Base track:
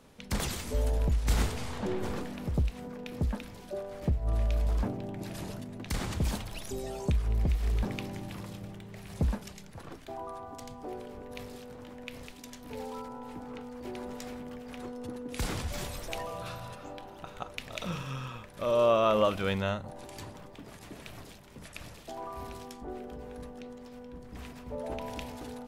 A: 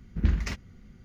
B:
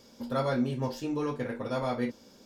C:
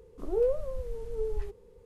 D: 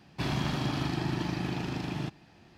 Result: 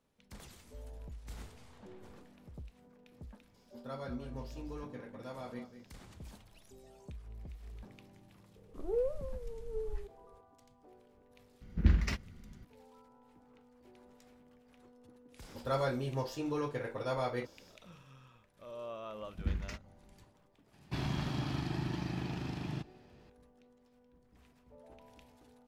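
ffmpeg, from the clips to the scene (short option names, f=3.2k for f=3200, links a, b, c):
-filter_complex "[2:a]asplit=2[a][b];[1:a]asplit=2[c][d];[0:a]volume=-20dB[e];[a]aecho=1:1:196:0.266[f];[c]bandreject=f=6.5k:w=11[g];[b]equalizer=f=230:t=o:w=0.29:g=-13.5[h];[4:a]lowshelf=f=130:g=7[i];[f]atrim=end=2.45,asetpts=PTS-STARTPTS,volume=-14dB,afade=t=in:d=0.004:c=hsin,afade=t=out:st=2.446:d=0.004:c=hsin,adelay=3540[j];[3:a]atrim=end=1.85,asetpts=PTS-STARTPTS,volume=-6.5dB,afade=t=in:d=0.004:c=hsin,afade=t=out:st=1.846:d=0.004:c=hsin,adelay=8560[k];[g]atrim=end=1.04,asetpts=PTS-STARTPTS,volume=-2dB,afade=t=in:d=0.004:c=hsin,afade=t=out:st=1.036:d=0.004:c=hsin,adelay=11610[l];[h]atrim=end=2.45,asetpts=PTS-STARTPTS,volume=-3dB,afade=t=in:d=0.1,afade=t=out:st=2.35:d=0.1,adelay=15350[m];[d]atrim=end=1.04,asetpts=PTS-STARTPTS,volume=-11dB,afade=t=in:d=0.004:c=hsin,afade=t=out:st=1.036:d=0.004:c=hsin,adelay=19220[n];[i]atrim=end=2.57,asetpts=PTS-STARTPTS,volume=-7.5dB,afade=t=in:d=0.004:c=hsin,afade=t=out:st=2.566:d=0.004:c=hsin,adelay=20730[o];[e][j][k][l][m][n][o]amix=inputs=7:normalize=0"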